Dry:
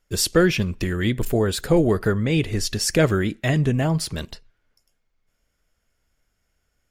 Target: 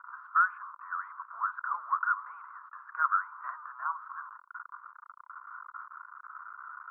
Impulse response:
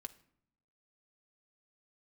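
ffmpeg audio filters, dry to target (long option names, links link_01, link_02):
-af "aeval=exprs='val(0)+0.5*0.0316*sgn(val(0))':channel_layout=same,asuperpass=centerf=1200:order=8:qfactor=2.7,volume=5.5dB"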